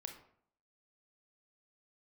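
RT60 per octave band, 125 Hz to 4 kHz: 0.65, 0.70, 0.65, 0.60, 0.50, 0.40 seconds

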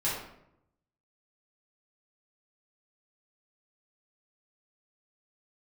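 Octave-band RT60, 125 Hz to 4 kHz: 1.1, 0.95, 0.85, 0.70, 0.60, 0.50 seconds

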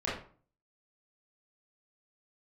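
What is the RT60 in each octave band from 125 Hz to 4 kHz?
0.60, 0.50, 0.45, 0.45, 0.35, 0.30 seconds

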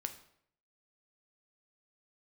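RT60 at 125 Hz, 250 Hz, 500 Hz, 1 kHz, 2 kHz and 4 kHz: 0.75, 0.70, 0.70, 0.65, 0.60, 0.55 seconds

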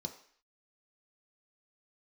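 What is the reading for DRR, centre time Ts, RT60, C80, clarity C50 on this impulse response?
3.5 dB, 14 ms, 0.55 s, 14.0 dB, 10.5 dB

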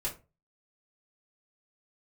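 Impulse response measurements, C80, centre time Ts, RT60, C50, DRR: 19.0 dB, 18 ms, 0.30 s, 11.5 dB, −5.0 dB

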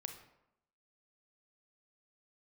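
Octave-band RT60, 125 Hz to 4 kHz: 0.80, 0.85, 0.85, 0.80, 0.65, 0.50 seconds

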